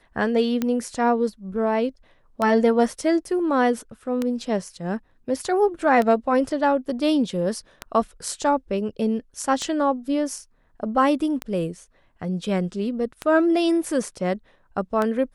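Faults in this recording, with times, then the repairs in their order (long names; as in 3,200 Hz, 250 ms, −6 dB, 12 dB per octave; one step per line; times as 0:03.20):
scratch tick 33 1/3 rpm −11 dBFS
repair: click removal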